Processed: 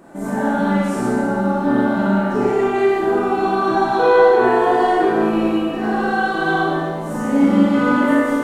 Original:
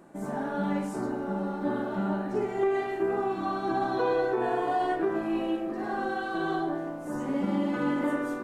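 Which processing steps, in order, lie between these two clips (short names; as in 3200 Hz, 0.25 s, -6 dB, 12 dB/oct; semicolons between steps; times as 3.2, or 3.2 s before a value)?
Schroeder reverb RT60 1.4 s, combs from 25 ms, DRR -5 dB; gain +7 dB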